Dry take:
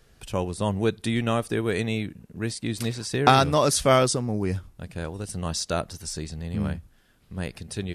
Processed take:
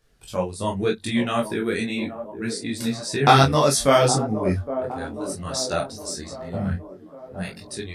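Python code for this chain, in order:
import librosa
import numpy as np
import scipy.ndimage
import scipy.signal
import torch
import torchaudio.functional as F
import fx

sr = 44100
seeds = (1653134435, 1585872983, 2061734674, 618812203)

p1 = fx.doubler(x, sr, ms=22.0, db=-6)
p2 = fx.noise_reduce_blind(p1, sr, reduce_db=9)
p3 = p2 + fx.echo_wet_bandpass(p2, sr, ms=815, feedback_pct=56, hz=450.0, wet_db=-9, dry=0)
p4 = fx.detune_double(p3, sr, cents=32)
y = p4 * 10.0 ** (5.5 / 20.0)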